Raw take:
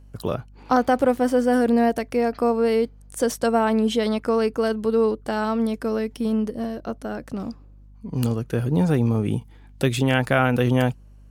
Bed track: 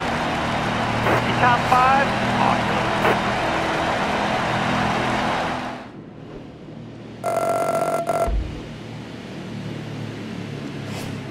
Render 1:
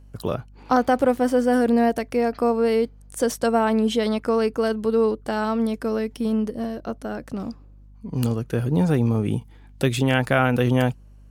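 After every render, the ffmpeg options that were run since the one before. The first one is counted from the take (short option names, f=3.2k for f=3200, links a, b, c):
-af anull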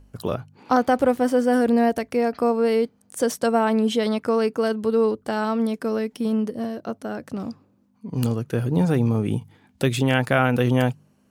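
-af "bandreject=f=50:t=h:w=4,bandreject=f=100:t=h:w=4,bandreject=f=150:t=h:w=4"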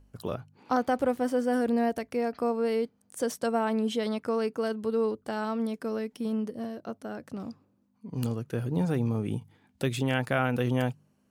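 -af "volume=-7.5dB"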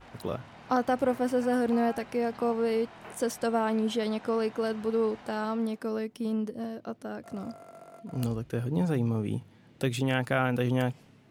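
-filter_complex "[1:a]volume=-28dB[a];[0:a][a]amix=inputs=2:normalize=0"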